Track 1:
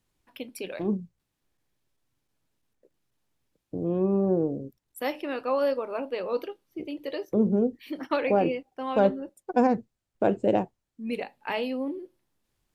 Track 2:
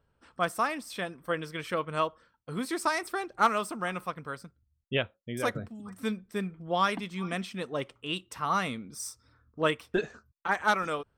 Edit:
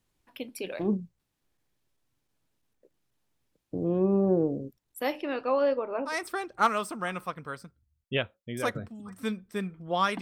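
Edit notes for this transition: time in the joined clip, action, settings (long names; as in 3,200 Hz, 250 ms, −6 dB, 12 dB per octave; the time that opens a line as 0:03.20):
track 1
0:05.17–0:06.15: low-pass filter 8,700 Hz → 1,600 Hz
0:06.10: continue with track 2 from 0:02.90, crossfade 0.10 s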